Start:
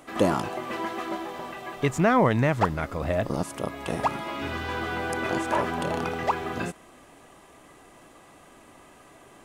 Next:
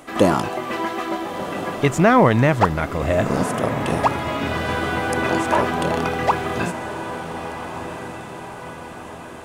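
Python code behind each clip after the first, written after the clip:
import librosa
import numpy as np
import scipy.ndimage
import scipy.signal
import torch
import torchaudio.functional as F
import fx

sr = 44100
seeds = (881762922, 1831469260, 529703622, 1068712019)

y = fx.echo_diffused(x, sr, ms=1373, feedback_pct=52, wet_db=-9.5)
y = y * 10.0 ** (6.5 / 20.0)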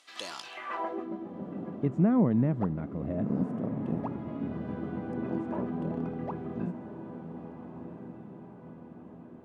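y = fx.filter_sweep_bandpass(x, sr, from_hz=4400.0, to_hz=210.0, start_s=0.45, end_s=1.09, q=1.9)
y = y * 10.0 ** (-4.0 / 20.0)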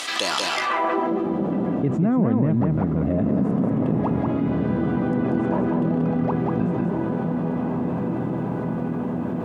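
y = x + 10.0 ** (-4.0 / 20.0) * np.pad(x, (int(187 * sr / 1000.0), 0))[:len(x)]
y = fx.env_flatten(y, sr, amount_pct=70)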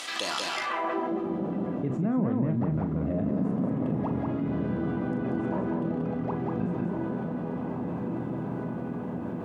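y = fx.doubler(x, sr, ms=39.0, db=-9)
y = y * 10.0 ** (-7.5 / 20.0)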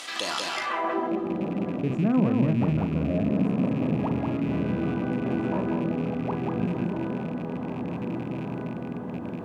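y = fx.rattle_buzz(x, sr, strikes_db=-32.0, level_db=-36.0)
y = fx.upward_expand(y, sr, threshold_db=-36.0, expansion=1.5)
y = y * 10.0 ** (5.0 / 20.0)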